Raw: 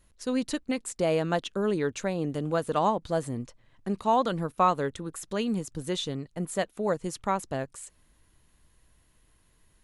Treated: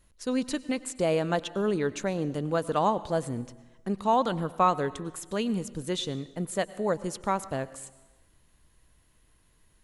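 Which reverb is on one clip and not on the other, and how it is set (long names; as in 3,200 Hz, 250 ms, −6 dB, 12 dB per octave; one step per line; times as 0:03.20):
dense smooth reverb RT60 1.1 s, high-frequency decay 0.85×, pre-delay 85 ms, DRR 17 dB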